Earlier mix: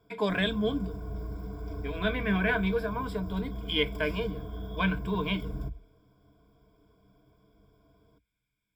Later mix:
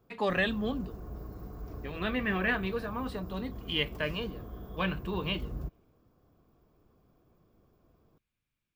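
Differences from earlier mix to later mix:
background: add parametric band 3,400 Hz −5.5 dB 1 octave
master: remove EQ curve with evenly spaced ripples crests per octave 1.7, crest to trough 16 dB

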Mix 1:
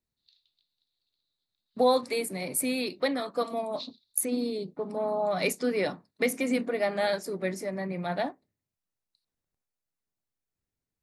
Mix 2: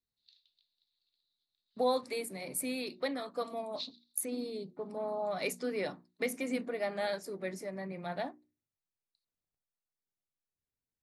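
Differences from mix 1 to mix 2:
speech −7.0 dB
master: add mains-hum notches 60/120/180/240/300/360 Hz

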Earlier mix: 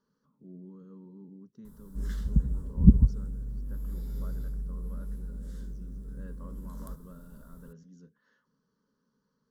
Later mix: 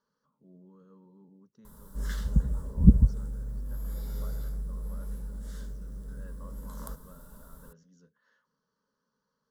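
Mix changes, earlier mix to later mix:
background +7.5 dB
master: add low shelf with overshoot 450 Hz −7 dB, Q 1.5

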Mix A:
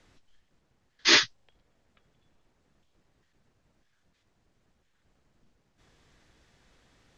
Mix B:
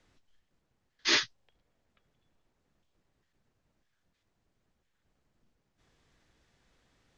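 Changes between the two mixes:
speech −6.5 dB
background −5.0 dB

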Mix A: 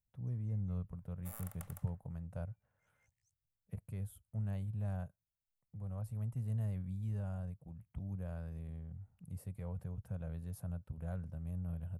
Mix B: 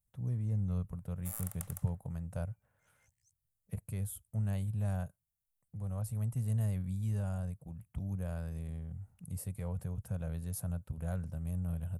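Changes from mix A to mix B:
speech +4.5 dB
master: add parametric band 8,900 Hz +10.5 dB 2.1 octaves

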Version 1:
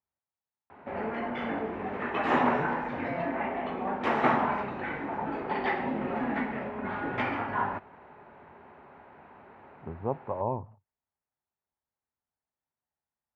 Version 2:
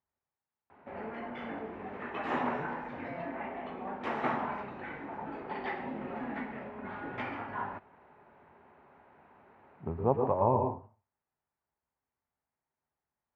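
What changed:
background −7.5 dB
reverb: on, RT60 0.35 s

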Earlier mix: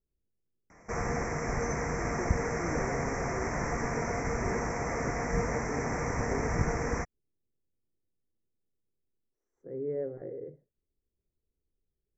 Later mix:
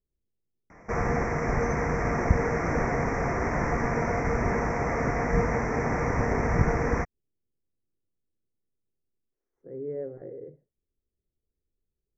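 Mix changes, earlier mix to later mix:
background +6.0 dB
master: add high-frequency loss of the air 160 metres

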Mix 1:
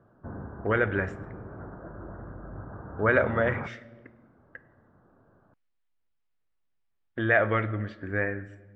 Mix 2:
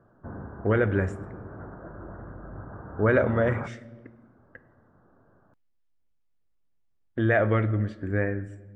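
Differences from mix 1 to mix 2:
speech: add tilt shelving filter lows +6.5 dB, about 660 Hz
master: remove high-frequency loss of the air 170 metres

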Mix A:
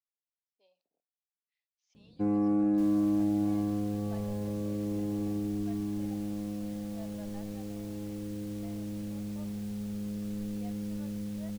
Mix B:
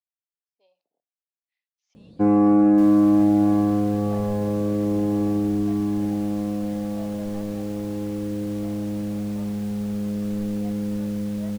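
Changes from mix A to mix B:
first sound +8.5 dB
second sound +5.0 dB
master: add parametric band 980 Hz +6.5 dB 2.7 octaves

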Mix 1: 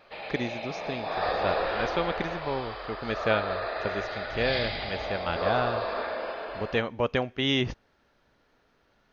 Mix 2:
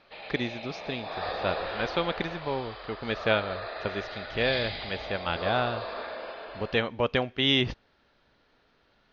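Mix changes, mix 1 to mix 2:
background −5.5 dB
master: add low-pass with resonance 4,200 Hz, resonance Q 1.7

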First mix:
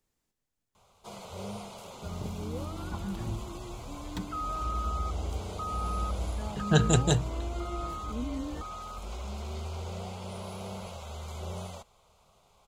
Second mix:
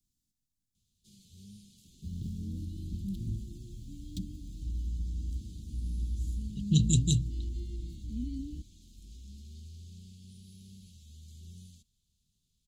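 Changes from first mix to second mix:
first sound −9.5 dB
master: add inverse Chebyshev band-stop filter 680–1,400 Hz, stop band 70 dB

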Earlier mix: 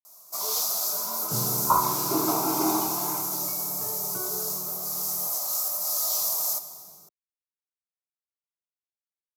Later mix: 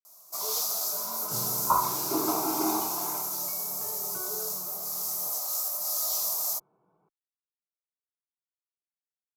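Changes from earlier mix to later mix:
second sound: add low-shelf EQ 410 Hz −8 dB
reverb: off

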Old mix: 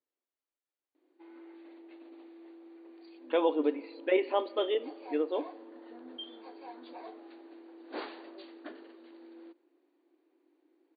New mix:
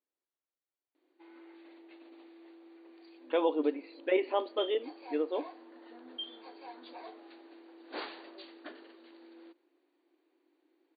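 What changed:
speech: send −10.0 dB
background: add spectral tilt +2 dB per octave

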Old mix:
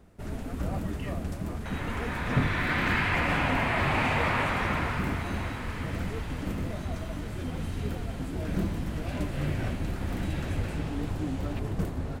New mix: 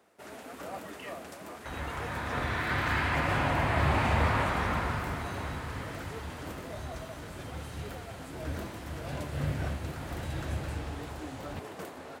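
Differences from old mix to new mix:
first sound: add high-pass filter 500 Hz 12 dB per octave
second sound: add parametric band 2,400 Hz −6 dB 0.84 octaves
master: add parametric band 74 Hz +8 dB 0.8 octaves

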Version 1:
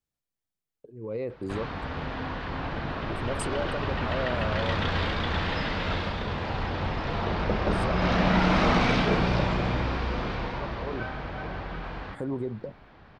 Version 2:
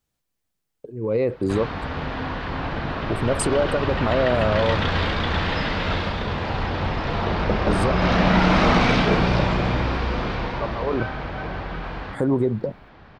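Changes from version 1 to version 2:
speech +11.0 dB
background +5.0 dB

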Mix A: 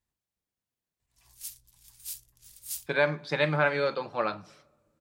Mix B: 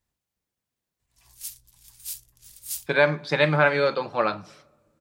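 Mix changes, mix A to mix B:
speech +5.5 dB
background +4.0 dB

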